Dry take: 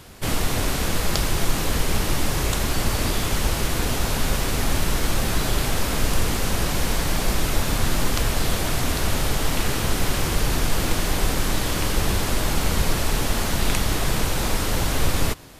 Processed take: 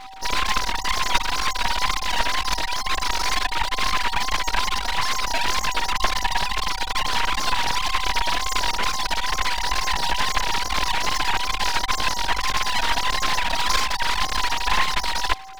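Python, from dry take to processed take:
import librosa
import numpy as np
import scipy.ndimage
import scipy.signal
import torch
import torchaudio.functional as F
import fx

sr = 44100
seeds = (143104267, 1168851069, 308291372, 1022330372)

y = fx.sine_speech(x, sr)
y = y * np.sin(2.0 * np.pi * 500.0 * np.arange(len(y)) / sr)
y = fx.wow_flutter(y, sr, seeds[0], rate_hz=2.1, depth_cents=100.0)
y = np.abs(y)
y = y + 10.0 ** (-41.0 / 20.0) * np.sin(2.0 * np.pi * 770.0 * np.arange(len(y)) / sr)
y = y * librosa.db_to_amplitude(2.0)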